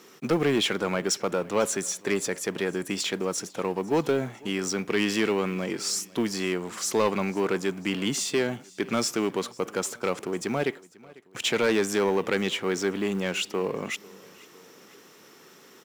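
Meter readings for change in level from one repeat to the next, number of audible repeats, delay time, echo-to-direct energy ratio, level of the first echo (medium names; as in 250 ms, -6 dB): -4.5 dB, 2, 497 ms, -21.5 dB, -23.0 dB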